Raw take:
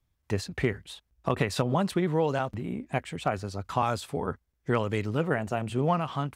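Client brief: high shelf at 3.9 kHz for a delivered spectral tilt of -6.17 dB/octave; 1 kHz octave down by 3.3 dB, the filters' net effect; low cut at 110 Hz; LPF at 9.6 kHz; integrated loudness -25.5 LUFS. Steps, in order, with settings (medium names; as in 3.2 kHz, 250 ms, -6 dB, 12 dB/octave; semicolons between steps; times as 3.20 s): high-pass 110 Hz; low-pass 9.6 kHz; peaking EQ 1 kHz -4 dB; treble shelf 3.9 kHz -7 dB; trim +5.5 dB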